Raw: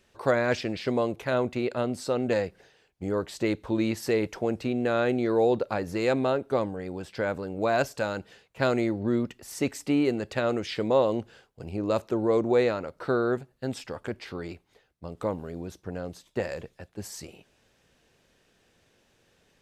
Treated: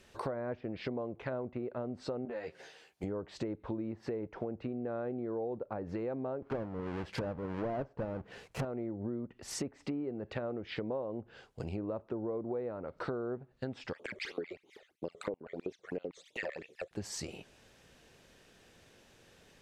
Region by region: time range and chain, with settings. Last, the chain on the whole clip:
2.25–3.04 s: high-pass 430 Hz 6 dB/octave + compression, threshold -32 dBFS + doubling 13 ms -2.5 dB
6.42–8.65 s: square wave that keeps the level + band-stop 3.6 kHz, Q 21
13.93–16.91 s: bass shelf 350 Hz +10.5 dB + LFO high-pass square 7.8 Hz 410–2100 Hz + phase shifter stages 12, 3 Hz, lowest notch 260–1700 Hz
whole clip: low-pass that closes with the level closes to 990 Hz, closed at -24.5 dBFS; compression 6:1, threshold -40 dBFS; trim +4 dB

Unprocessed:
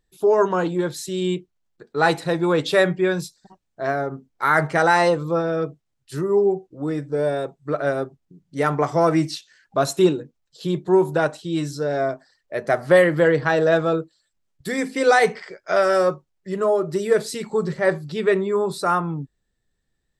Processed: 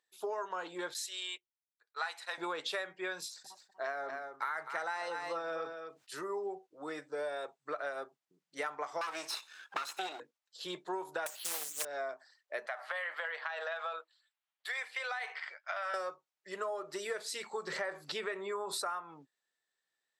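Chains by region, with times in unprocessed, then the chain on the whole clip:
0.94–2.38 s: high-pass 1 kHz + gate -42 dBFS, range -14 dB
3.20–6.26 s: delay 242 ms -11 dB + decay stretcher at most 120 dB/s
9.01–10.20 s: comb filter that takes the minimum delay 0.76 ms + high-pass 400 Hz 6 dB/octave + three bands compressed up and down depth 100%
11.26–11.85 s: zero-crossing glitches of -23.5 dBFS + careless resampling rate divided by 6×, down filtered, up zero stuff + loudspeaker Doppler distortion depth 0.92 ms
12.66–15.94 s: high-pass 650 Hz 24 dB/octave + resonant high shelf 4.4 kHz -7 dB, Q 1.5 + compression 5:1, threshold -25 dBFS
17.67–18.90 s: dynamic bell 4.2 kHz, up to -6 dB, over -41 dBFS, Q 0.86 + level flattener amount 50%
whole clip: high-pass 820 Hz 12 dB/octave; treble shelf 9.5 kHz -7.5 dB; compression 12:1, threshold -31 dBFS; trim -3 dB

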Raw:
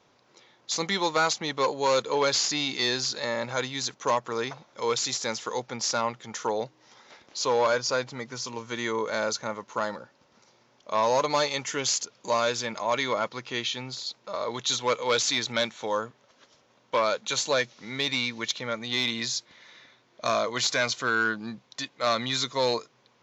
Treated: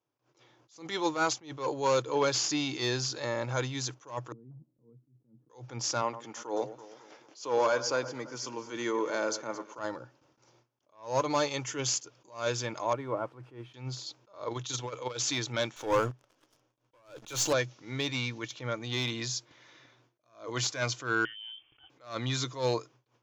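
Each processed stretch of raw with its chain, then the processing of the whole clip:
4.32–5.50 s: compression 10:1, threshold -35 dBFS + Butterworth band-pass 180 Hz, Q 1.4 + doubling 13 ms -12.5 dB
6.02–9.79 s: high-pass 170 Hz 24 dB/octave + band-stop 3.8 kHz, Q 25 + echo whose repeats swap between lows and highs 110 ms, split 1.8 kHz, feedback 65%, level -13 dB
12.93–13.74 s: zero-crossing glitches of -23 dBFS + low-pass 1.1 kHz + upward expansion, over -37 dBFS
14.43–15.21 s: compressor with a negative ratio -27 dBFS, ratio -0.5 + AM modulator 22 Hz, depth 40%
15.76–17.53 s: partial rectifier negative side -3 dB + waveshaping leveller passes 3
21.25–21.90 s: tilt EQ -3 dB/octave + compression 5:1, threshold -37 dBFS + frequency inversion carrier 3.3 kHz
whole clip: gate with hold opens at -50 dBFS; graphic EQ with 31 bands 125 Hz +11 dB, 200 Hz -10 dB, 315 Hz +9 dB, 2 kHz -5 dB, 4 kHz -7 dB; attacks held to a fixed rise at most 160 dB/s; trim -3 dB

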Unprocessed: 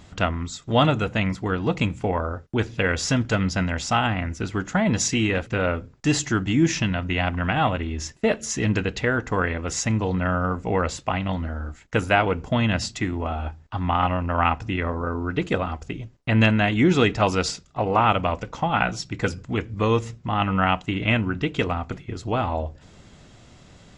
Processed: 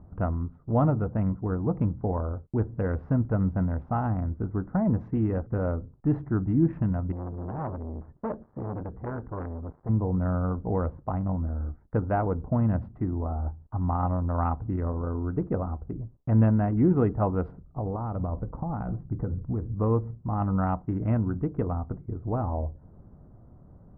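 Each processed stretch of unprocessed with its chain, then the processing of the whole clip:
7.12–9.89 s: dead-time distortion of 0.086 ms + transformer saturation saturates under 2.1 kHz
17.52–19.72 s: tilt EQ -1.5 dB/octave + compression 12:1, threshold -22 dBFS
whole clip: local Wiener filter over 15 samples; low-pass 1.2 kHz 24 dB/octave; bass shelf 240 Hz +8 dB; trim -7 dB

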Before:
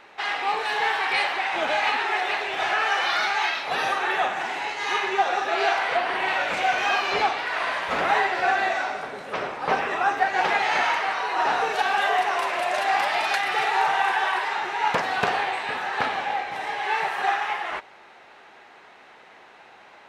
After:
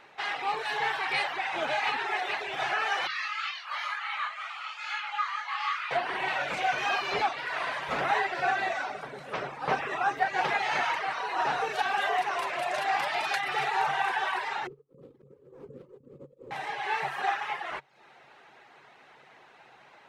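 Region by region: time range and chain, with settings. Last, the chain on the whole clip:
3.07–5.91 s: low-pass 3.7 kHz 6 dB/octave + chorus 2.1 Hz, delay 17.5 ms, depth 7.6 ms + frequency shift +450 Hz
14.67–16.51 s: compressor with a negative ratio -31 dBFS, ratio -0.5 + brick-wall FIR band-stop 570–6000 Hz + decimation joined by straight lines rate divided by 6×
whole clip: reverb removal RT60 0.55 s; peaking EQ 140 Hz +14.5 dB 0.2 oct; trim -4.5 dB

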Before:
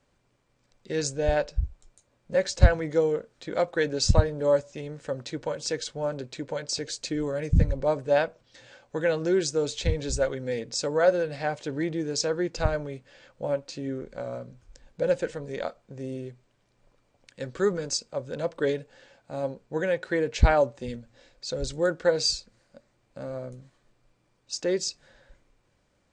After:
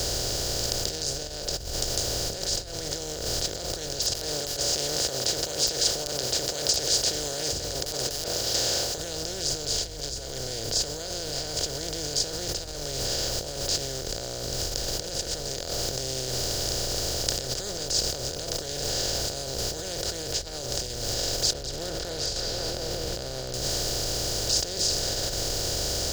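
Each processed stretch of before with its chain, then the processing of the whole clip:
3.99–8.98 s: high-pass 520 Hz + integer overflow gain 20.5 dB
9.50–12.21 s: rippled EQ curve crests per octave 1.8, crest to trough 8 dB + tape noise reduction on one side only decoder only
21.53–23.54 s: distance through air 400 m + repeats whose band climbs or falls 178 ms, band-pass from 2.7 kHz, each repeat -0.7 oct, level -11 dB + compression 4:1, threshold -33 dBFS
whole clip: spectral levelling over time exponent 0.2; compressor with a negative ratio -19 dBFS, ratio -1; resonant high shelf 3 kHz +12.5 dB, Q 1.5; trim -15 dB

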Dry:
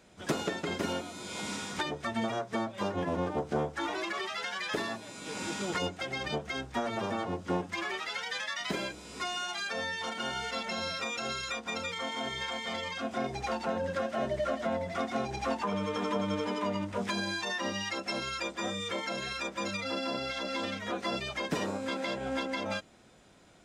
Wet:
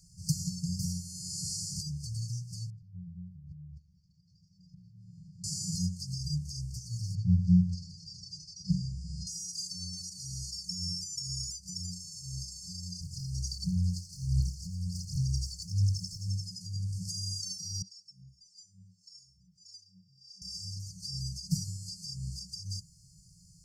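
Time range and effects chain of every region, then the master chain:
2.70–5.44 s: low-pass 1 kHz + compression 16:1, threshold -42 dBFS
7.15–9.27 s: low-pass 3.7 kHz + bass shelf 290 Hz +9 dB
13.01–16.28 s: phaser 1.4 Hz, delay 2.6 ms, feedback 68% + loudspeaker Doppler distortion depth 0.18 ms
17.82–20.42 s: delay 140 ms -15 dB + LFO band-pass sine 1.7 Hz 220–2900 Hz
whole clip: FFT band-reject 190–4300 Hz; dynamic bell 110 Hz, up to +4 dB, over -53 dBFS, Q 1.2; trim +7.5 dB

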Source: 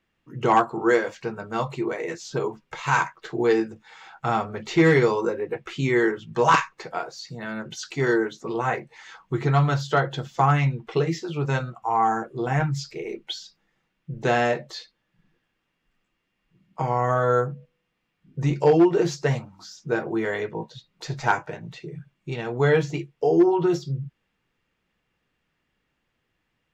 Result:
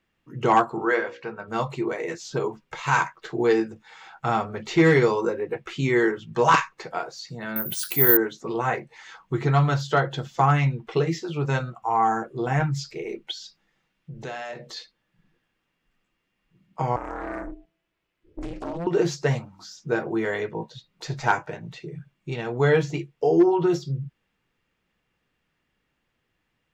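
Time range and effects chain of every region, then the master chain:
0.85–1.48 s: low-pass 2.3 kHz + tilt EQ +2.5 dB/octave + hum notches 60/120/180/240/300/360/420/480/540 Hz
7.56–8.17 s: careless resampling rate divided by 3×, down none, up zero stuff + upward compressor, threshold -21 dBFS
13.31–14.77 s: peaking EQ 4.4 kHz +3 dB 1.9 oct + compression 2.5:1, threshold -36 dBFS + hum notches 60/120/180/240/300/360/420/480 Hz
16.96–18.87 s: compression 12:1, threshold -25 dBFS + ring modulator 170 Hz + loudspeaker Doppler distortion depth 0.49 ms
whole clip: none

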